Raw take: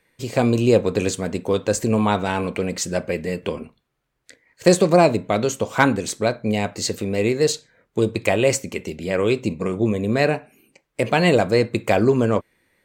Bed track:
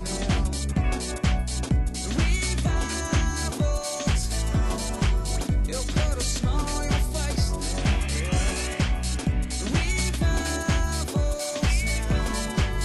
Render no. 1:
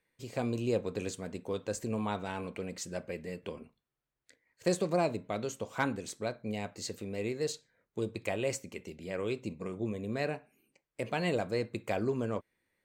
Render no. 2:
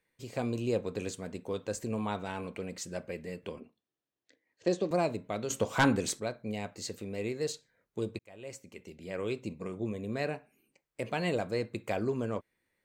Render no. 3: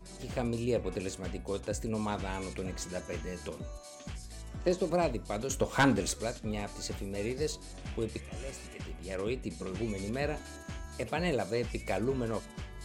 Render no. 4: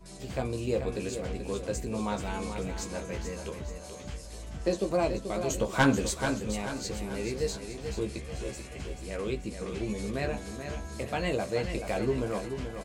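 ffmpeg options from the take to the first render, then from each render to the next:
-af "volume=-15dB"
-filter_complex "[0:a]asettb=1/sr,asplit=3[a][b][c];[a]atrim=end=3.604[d];[b]atrim=start=3.6:end=4.91,asetpts=PTS-STARTPTS,afade=t=in:d=0.004:c=qsin,afade=t=out:st=1.306:d=0.004:c=qsin,highpass=130,equalizer=f=140:t=q:w=4:g=-8,equalizer=f=310:t=q:w=4:g=5,equalizer=f=970:t=q:w=4:g=-4,equalizer=f=1.4k:t=q:w=4:g=-7,equalizer=f=2.2k:t=q:w=4:g=-6,equalizer=f=4.6k:t=q:w=4:g=-4,lowpass=f=5.9k:w=0.5412,lowpass=f=5.9k:w=1.3066[e];[c]atrim=start=4.906[f];[d][e]acrossfade=d=0.004:c1=hsin:c2=qsin[g];[g][f]acrossfade=d=0.004:c1=qsin:c2=hsin,asettb=1/sr,asplit=3[h][i][j];[h]atrim=end=5.504[k];[i]atrim=start=5.5:end=6.2,asetpts=PTS-STARTPTS,afade=t=in:d=0.004:c=qsin,afade=t=out:st=0.696:d=0.004:c=qsin,aeval=exprs='0.15*sin(PI/2*1.78*val(0)/0.15)':c=same[l];[j]atrim=start=6.196[m];[k][l]acrossfade=d=0.004:c1=hsin:c2=qsin[n];[n][m]acrossfade=d=0.004:c1=qsin:c2=hsin,asplit=2[o][p];[o]atrim=end=8.19,asetpts=PTS-STARTPTS,afade=t=out:st=8.186:d=0.004:c=hsin[q];[p]atrim=start=8.19,asetpts=PTS-STARTPTS,afade=t=in:d=1.05[r];[q][r]concat=n=2:v=0:a=1"
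-filter_complex "[1:a]volume=-19dB[a];[0:a][a]amix=inputs=2:normalize=0"
-filter_complex "[0:a]asplit=2[a][b];[b]adelay=15,volume=-5dB[c];[a][c]amix=inputs=2:normalize=0,asplit=2[d][e];[e]aecho=0:1:434|868|1302|1736|2170:0.398|0.187|0.0879|0.0413|0.0194[f];[d][f]amix=inputs=2:normalize=0"

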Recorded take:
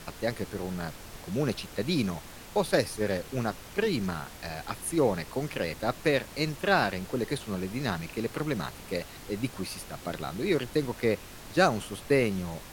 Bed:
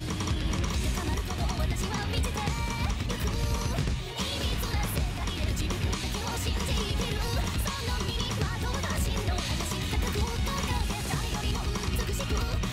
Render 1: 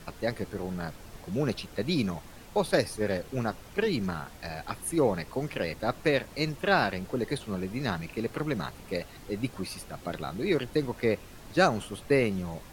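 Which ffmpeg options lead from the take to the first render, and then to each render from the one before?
-af "afftdn=nr=6:nf=-46"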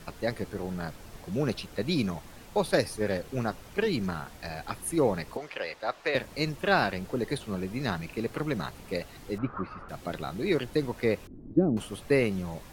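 -filter_complex "[0:a]asettb=1/sr,asplit=3[a][b][c];[a]atrim=end=5.374[d];[b]atrim=start=5.37:end=6.15,asetpts=PTS-STARTPTS,afade=t=in:d=0.004:c=qsin,afade=t=out:st=0.776:d=0.004:c=qsin,acrossover=split=450 6200:gain=0.112 1 0.224[e][f][g];[e][f][g]amix=inputs=3:normalize=0[h];[c]atrim=start=6.146[i];[d][h]acrossfade=d=0.004:c1=hsin:c2=qsin[j];[j][i]acrossfade=d=0.004:c1=qsin:c2=hsin,asettb=1/sr,asplit=3[k][l][m];[k]atrim=end=9.384[n];[l]atrim=start=9.38:end=9.89,asetpts=PTS-STARTPTS,afade=t=in:d=0.004:c=qsin,afade=t=out:st=0.506:d=0.004:c=qsin,lowpass=f=1.3k:t=q:w=7.7[o];[m]atrim=start=9.886[p];[n][o]acrossfade=d=0.004:c1=hsin:c2=qsin[q];[q][p]acrossfade=d=0.004:c1=qsin:c2=hsin,asettb=1/sr,asplit=3[r][s][t];[r]atrim=end=11.274[u];[s]atrim=start=11.27:end=11.77,asetpts=PTS-STARTPTS,afade=t=in:d=0.004:c=qsin,afade=t=out:st=0.496:d=0.004:c=qsin,lowpass=f=290:t=q:w=3[v];[t]atrim=start=11.766[w];[u][v]acrossfade=d=0.004:c1=hsin:c2=qsin[x];[x][w]acrossfade=d=0.004:c1=qsin:c2=hsin"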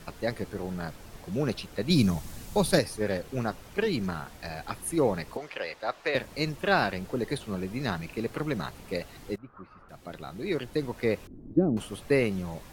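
-filter_complex "[0:a]asettb=1/sr,asplit=3[a][b][c];[a]atrim=end=1.904[d];[b]atrim=start=1.9:end=2.79,asetpts=PTS-STARTPTS,afade=t=in:d=0.004:c=qsin,afade=t=out:st=0.886:d=0.004:c=qsin,bass=f=250:g=9,treble=f=4k:g=9[e];[c]atrim=start=2.786[f];[d][e]acrossfade=d=0.004:c1=hsin:c2=qsin[g];[g][f]acrossfade=d=0.004:c1=qsin:c2=hsin,asplit=2[h][i];[h]atrim=end=9.36,asetpts=PTS-STARTPTS,afade=t=out:st=9.356:d=0.004:c=hsin:silence=0.112202[j];[i]atrim=start=9.36,asetpts=PTS-STARTPTS,afade=t=in:d=1.82:silence=0.112202[k];[j][k]concat=n=2:v=0:a=1"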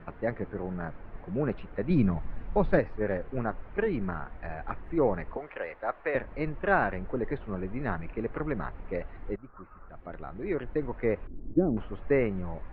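-af "lowpass=f=2k:w=0.5412,lowpass=f=2k:w=1.3066,asubboost=boost=5:cutoff=55"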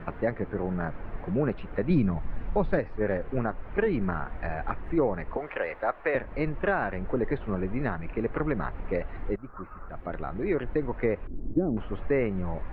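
-filter_complex "[0:a]asplit=2[a][b];[b]acompressor=threshold=-36dB:ratio=6,volume=3dB[c];[a][c]amix=inputs=2:normalize=0,alimiter=limit=-14.5dB:level=0:latency=1:release=374"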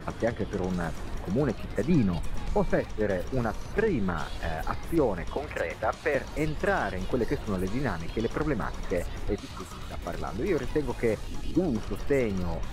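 -filter_complex "[1:a]volume=-12.5dB[a];[0:a][a]amix=inputs=2:normalize=0"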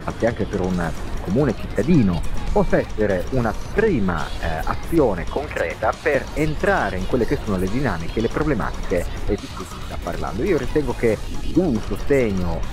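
-af "volume=8dB"

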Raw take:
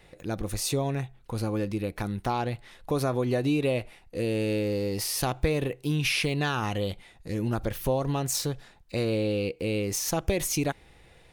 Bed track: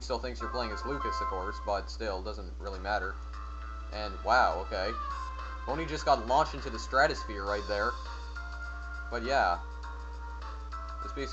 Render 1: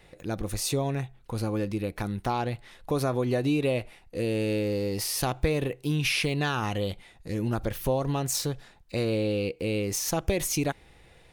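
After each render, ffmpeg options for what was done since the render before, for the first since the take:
-af anull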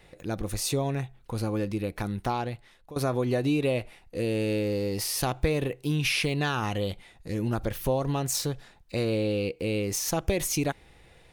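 -filter_complex "[0:a]asplit=2[a][b];[a]atrim=end=2.96,asetpts=PTS-STARTPTS,afade=t=out:st=2.27:d=0.69:silence=0.125893[c];[b]atrim=start=2.96,asetpts=PTS-STARTPTS,afade=t=in:d=0.004:c=hsin:silence=0.125893[d];[c][d]concat=n=2:v=0:a=1"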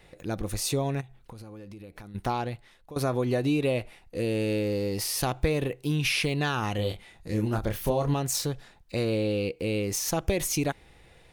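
-filter_complex "[0:a]asplit=3[a][b][c];[a]afade=t=out:st=1:d=0.02[d];[b]acompressor=threshold=-40dB:ratio=12:attack=3.2:release=140:knee=1:detection=peak,afade=t=in:st=1:d=0.02,afade=t=out:st=2.14:d=0.02[e];[c]afade=t=in:st=2.14:d=0.02[f];[d][e][f]amix=inputs=3:normalize=0,asettb=1/sr,asplit=3[g][h][i];[g]atrim=end=6.764[j];[h]atrim=start=6.76:end=8.14,asetpts=PTS-STARTPTS,afade=t=in:d=0.004:c=qsin,afade=t=out:st=1.376:d=0.004:c=qsin,asplit=2[k][l];[l]adelay=28,volume=-5dB[m];[k][m]amix=inputs=2:normalize=0,atrim=end_sample=60858[n];[i]atrim=start=8.136[o];[j][n]acrossfade=d=0.004:c1=hsin:c2=qsin[p];[p][o]acrossfade=d=0.004:c1=qsin:c2=hsin"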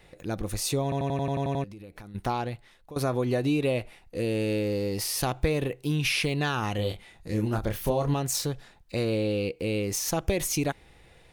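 -filter_complex "[0:a]asplit=10[a][b][c][d][e][f][g][h][i][j];[a]atrim=end=0.922[k];[b]atrim=start=0.828:end=0.922[l];[c]atrim=start=0.828:end=0.922[m];[d]atrim=start=0.828:end=0.922[n];[e]atrim=start=0.828:end=0.922[o];[f]atrim=start=0.828:end=0.922[p];[g]atrim=start=0.828:end=0.922[q];[h]atrim=start=0.828:end=0.922[r];[i]atrim=start=0.828:end=0.922[s];[j]atrim=start=1.638[t];[k][l]acrossfade=d=0.004:c1=hsin:c2=hsin[u];[u][m]acrossfade=d=0.004:c1=hsin:c2=hsin[v];[v][n]acrossfade=d=0.004:c1=hsin:c2=hsin[w];[w][o]acrossfade=d=0.004:c1=hsin:c2=hsin[x];[x][p]acrossfade=d=0.004:c1=hsin:c2=hsin[y];[y][q]acrossfade=d=0.004:c1=hsin:c2=hsin[z];[z][r]acrossfade=d=0.004:c1=hsin:c2=hsin[aa];[aa][s]acrossfade=d=0.004:c1=hsin:c2=hsin[ab];[ab][t]acrossfade=d=0.004:c1=hsin:c2=hsin"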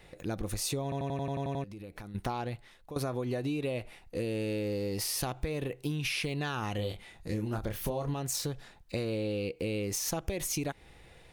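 -af "acompressor=threshold=-30dB:ratio=6"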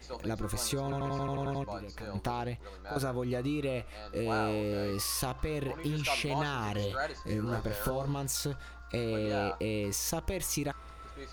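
-filter_complex "[1:a]volume=-9.5dB[a];[0:a][a]amix=inputs=2:normalize=0"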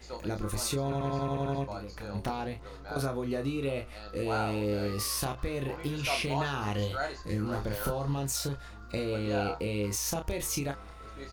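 -filter_complex "[0:a]asplit=2[a][b];[b]adelay=29,volume=-6dB[c];[a][c]amix=inputs=2:normalize=0,asplit=2[d][e];[e]adelay=1399,volume=-23dB,highshelf=f=4k:g=-31.5[f];[d][f]amix=inputs=2:normalize=0"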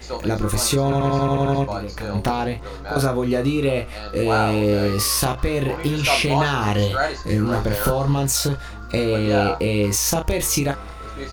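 -af "volume=12dB"

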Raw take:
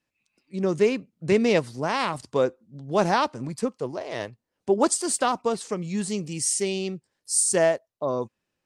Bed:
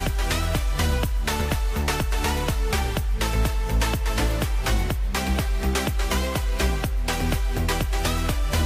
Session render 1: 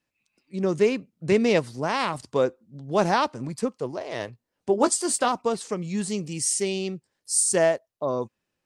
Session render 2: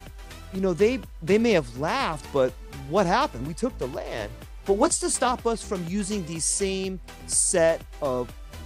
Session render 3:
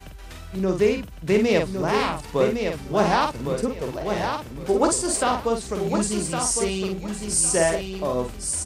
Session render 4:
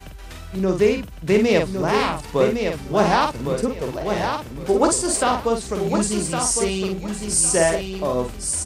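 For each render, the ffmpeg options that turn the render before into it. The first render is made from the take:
-filter_complex "[0:a]asettb=1/sr,asplit=3[a][b][c];[a]atrim=end=4.264[d];[b]atrim=start=4.26:end=5.29,asetpts=PTS-STARTPTS,afade=t=in:d=0.004:c=qsin,afade=t=out:st=1.026:d=0.004:c=qsin,asplit=2[e][f];[f]adelay=17,volume=-10dB[g];[e][g]amix=inputs=2:normalize=0,atrim=end_sample=45423[h];[c]atrim=start=5.286[i];[d][h]acrossfade=d=0.004:c1=hsin:c2=qsin[j];[j][i]acrossfade=d=0.004:c1=qsin:c2=hsin"
-filter_complex "[1:a]volume=-18dB[a];[0:a][a]amix=inputs=2:normalize=0"
-filter_complex "[0:a]asplit=2[a][b];[b]adelay=48,volume=-5dB[c];[a][c]amix=inputs=2:normalize=0,aecho=1:1:1109|2218|3327:0.501|0.105|0.0221"
-af "volume=2.5dB"

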